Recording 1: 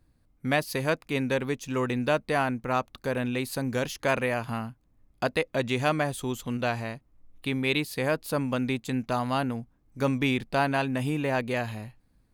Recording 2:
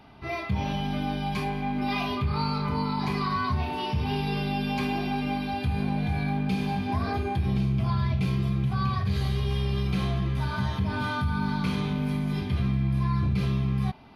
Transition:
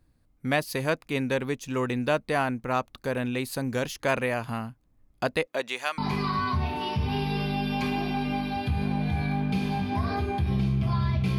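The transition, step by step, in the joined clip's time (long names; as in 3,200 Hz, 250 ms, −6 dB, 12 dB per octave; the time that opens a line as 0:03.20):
recording 1
0:05.45–0:05.98: high-pass filter 270 Hz → 1,400 Hz
0:05.98: continue with recording 2 from 0:02.95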